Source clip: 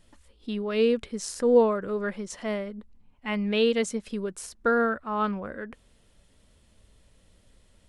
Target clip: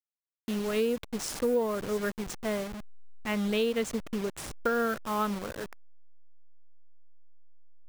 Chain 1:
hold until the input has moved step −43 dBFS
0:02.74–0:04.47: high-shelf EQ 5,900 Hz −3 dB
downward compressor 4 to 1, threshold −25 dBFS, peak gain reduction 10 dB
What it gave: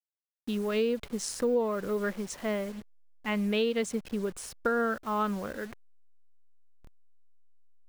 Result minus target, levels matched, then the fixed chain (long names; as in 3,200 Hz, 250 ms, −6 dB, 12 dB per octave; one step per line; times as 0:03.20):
hold until the input has moved: distortion −10 dB
hold until the input has moved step −33 dBFS
0:02.74–0:04.47: high-shelf EQ 5,900 Hz −3 dB
downward compressor 4 to 1, threshold −25 dBFS, peak gain reduction 9.5 dB